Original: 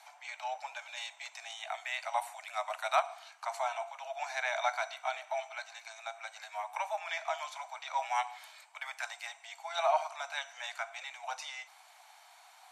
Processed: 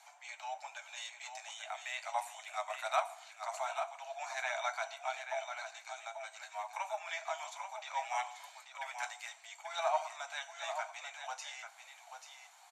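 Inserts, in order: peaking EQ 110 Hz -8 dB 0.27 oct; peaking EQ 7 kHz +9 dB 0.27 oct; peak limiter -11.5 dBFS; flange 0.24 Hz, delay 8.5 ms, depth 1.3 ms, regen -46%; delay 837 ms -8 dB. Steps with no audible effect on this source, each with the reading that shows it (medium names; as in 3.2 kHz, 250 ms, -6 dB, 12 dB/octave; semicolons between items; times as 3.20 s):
peaking EQ 110 Hz: input has nothing below 510 Hz; peak limiter -11.5 dBFS: peak at its input -13.5 dBFS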